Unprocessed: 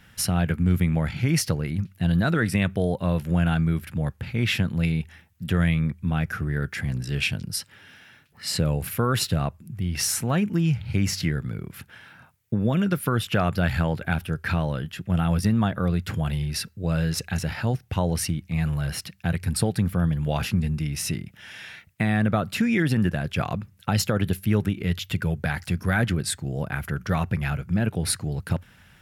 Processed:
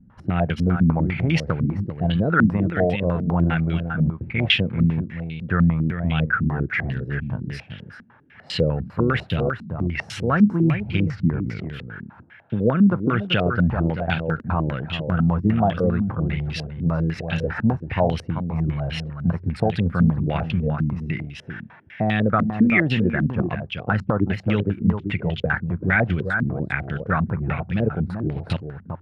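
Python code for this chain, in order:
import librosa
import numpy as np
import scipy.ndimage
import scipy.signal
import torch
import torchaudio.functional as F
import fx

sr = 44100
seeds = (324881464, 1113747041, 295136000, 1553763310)

y = x + 10.0 ** (-7.5 / 20.0) * np.pad(x, (int(386 * sr / 1000.0), 0))[:len(x)]
y = fx.filter_held_lowpass(y, sr, hz=10.0, low_hz=230.0, high_hz=3100.0)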